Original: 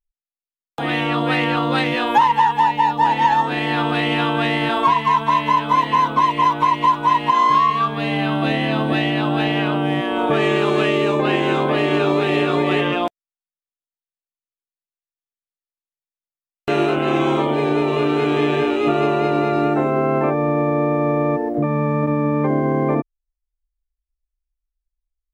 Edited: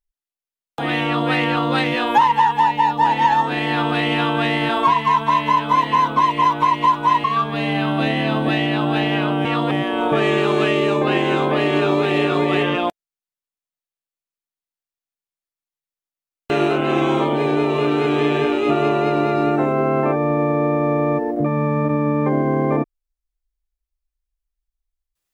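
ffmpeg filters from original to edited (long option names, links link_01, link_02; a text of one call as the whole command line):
ffmpeg -i in.wav -filter_complex "[0:a]asplit=4[link_01][link_02][link_03][link_04];[link_01]atrim=end=7.242[link_05];[link_02]atrim=start=7.678:end=9.892[link_06];[link_03]atrim=start=1.038:end=1.302[link_07];[link_04]atrim=start=9.888[link_08];[link_05][link_06]acrossfade=duration=0.004:curve1=hsin:curve2=hsin[link_09];[link_09][link_07]acrossfade=duration=0.004:curve1=hsin:curve2=hsin[link_10];[link_10][link_08]acrossfade=duration=0.004:curve1=hsin:curve2=hsin" out.wav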